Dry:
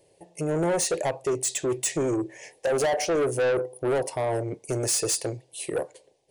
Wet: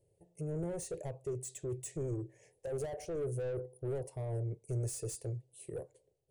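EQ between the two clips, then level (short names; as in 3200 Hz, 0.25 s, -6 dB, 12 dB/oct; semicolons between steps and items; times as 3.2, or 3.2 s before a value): EQ curve 120 Hz 0 dB, 260 Hz -17 dB, 420 Hz -10 dB, 900 Hz -22 dB, 5100 Hz -23 dB, 7900 Hz -15 dB; -1.5 dB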